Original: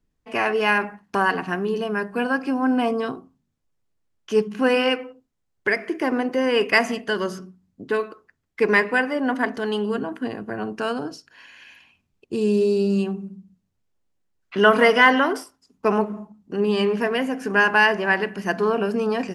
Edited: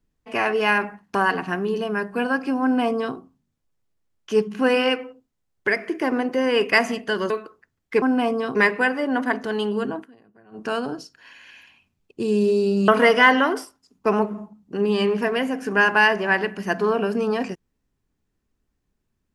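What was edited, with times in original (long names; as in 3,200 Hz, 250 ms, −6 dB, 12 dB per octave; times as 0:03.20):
0:02.62–0:03.15: duplicate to 0:08.68
0:07.30–0:07.96: remove
0:10.09–0:10.78: duck −23.5 dB, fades 0.14 s
0:13.01–0:14.67: remove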